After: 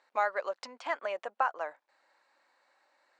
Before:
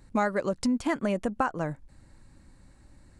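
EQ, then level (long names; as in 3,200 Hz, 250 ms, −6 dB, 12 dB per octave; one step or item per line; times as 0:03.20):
high-pass filter 610 Hz 24 dB per octave
Bessel low-pass filter 6,000 Hz, order 2
high-frequency loss of the air 110 metres
0.0 dB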